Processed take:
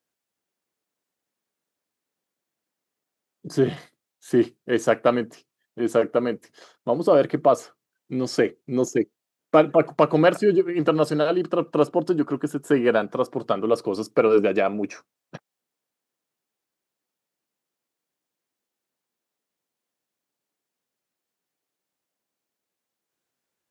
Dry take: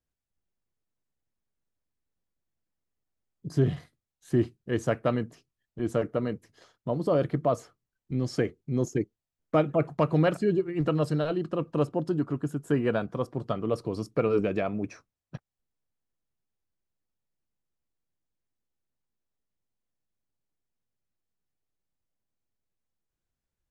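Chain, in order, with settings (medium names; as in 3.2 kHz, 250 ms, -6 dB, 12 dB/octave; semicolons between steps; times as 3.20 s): high-pass 280 Hz 12 dB/octave; trim +8.5 dB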